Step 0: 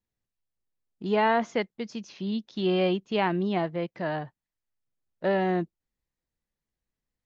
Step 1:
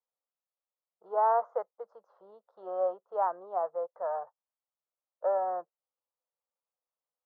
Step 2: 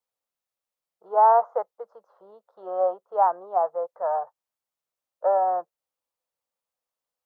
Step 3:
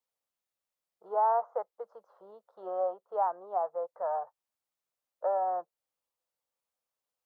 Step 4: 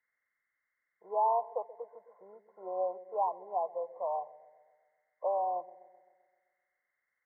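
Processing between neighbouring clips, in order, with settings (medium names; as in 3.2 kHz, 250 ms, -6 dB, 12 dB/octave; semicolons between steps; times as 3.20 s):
elliptic band-pass 500–1300 Hz, stop band 40 dB
dynamic bell 810 Hz, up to +6 dB, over -40 dBFS, Q 2.5; trim +4.5 dB
compression 1.5:1, threshold -35 dBFS, peak gain reduction 8 dB; trim -2 dB
knee-point frequency compression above 1 kHz 4:1; feedback echo behind a low-pass 130 ms, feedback 57%, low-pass 420 Hz, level -11 dB; trim -2 dB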